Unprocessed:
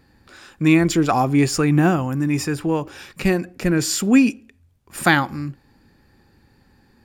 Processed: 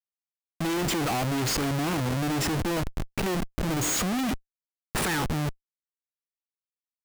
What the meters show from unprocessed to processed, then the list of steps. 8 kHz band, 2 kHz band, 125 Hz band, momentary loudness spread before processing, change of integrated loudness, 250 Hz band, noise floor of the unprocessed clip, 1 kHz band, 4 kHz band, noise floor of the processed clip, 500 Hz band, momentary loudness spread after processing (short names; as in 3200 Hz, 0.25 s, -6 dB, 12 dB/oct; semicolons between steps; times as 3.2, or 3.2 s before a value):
-3.0 dB, -9.0 dB, -7.5 dB, 10 LU, -9.0 dB, -11.0 dB, -58 dBFS, -7.5 dB, -2.5 dB, under -85 dBFS, -8.0 dB, 6 LU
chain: vibrato 0.45 Hz 93 cents; spectral delete 3.57–3.96, 810–6300 Hz; Schmitt trigger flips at -30 dBFS; gain -6 dB